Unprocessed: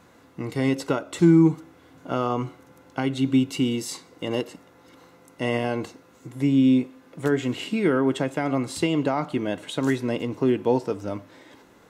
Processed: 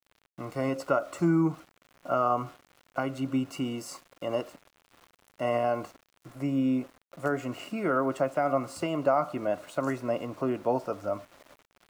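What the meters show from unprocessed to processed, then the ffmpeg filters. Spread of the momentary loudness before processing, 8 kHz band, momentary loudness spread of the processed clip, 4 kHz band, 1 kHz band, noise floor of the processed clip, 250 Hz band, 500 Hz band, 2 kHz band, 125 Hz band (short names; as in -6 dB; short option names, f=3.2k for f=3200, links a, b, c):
16 LU, -8.5 dB, 12 LU, -10.5 dB, +1.0 dB, -72 dBFS, -8.5 dB, -3.0 dB, -5.5 dB, -8.5 dB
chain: -af "superequalizer=8b=3.98:9b=1.78:10b=3.55:13b=0.316,aeval=exprs='val(0)*gte(abs(val(0)),0.00891)':c=same,volume=-8.5dB"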